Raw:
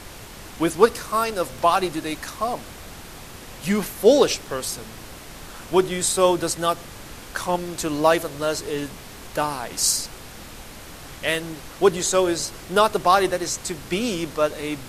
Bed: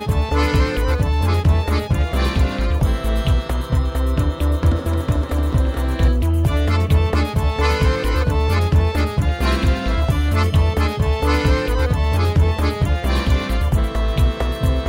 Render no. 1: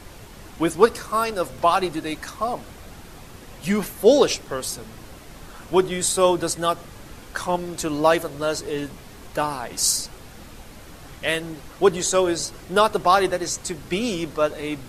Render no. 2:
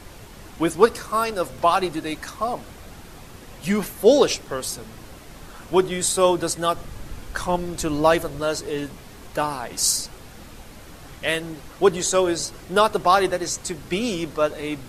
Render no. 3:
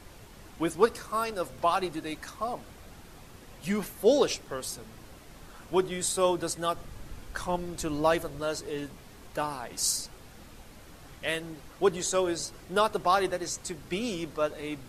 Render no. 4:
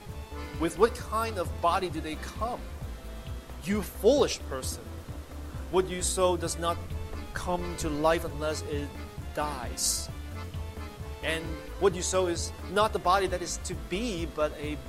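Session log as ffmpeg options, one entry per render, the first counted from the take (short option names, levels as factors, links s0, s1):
-af "afftdn=nr=6:nf=-40"
-filter_complex "[0:a]asettb=1/sr,asplit=3[s0][s1][s2];[s0]atrim=end=6.754[s3];[s1]atrim=start=6.75:end=8.4,asetpts=PTS-STARTPTS,afade=t=in:d=0.004:c=qsin,afade=t=out:st=1.646:d=0.004:c=qsin,lowshelf=f=100:g=10[s4];[s2]atrim=start=8.396[s5];[s3][s4]acrossfade=d=0.004:c1=hsin:c2=qsin[s6];[s6][s5]acrossfade=d=0.004:c1=qsin:c2=hsin"
-af "volume=0.422"
-filter_complex "[1:a]volume=0.0794[s0];[0:a][s0]amix=inputs=2:normalize=0"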